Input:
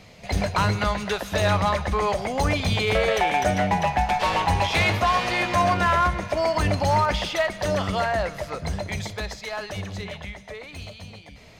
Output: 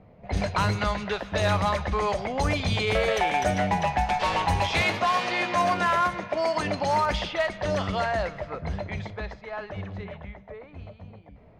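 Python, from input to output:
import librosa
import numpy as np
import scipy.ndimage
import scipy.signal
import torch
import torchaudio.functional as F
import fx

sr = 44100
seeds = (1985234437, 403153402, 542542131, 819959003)

y = fx.highpass(x, sr, hz=170.0, slope=12, at=(4.81, 7.05))
y = fx.env_lowpass(y, sr, base_hz=850.0, full_db=-17.0)
y = y * 10.0 ** (-2.5 / 20.0)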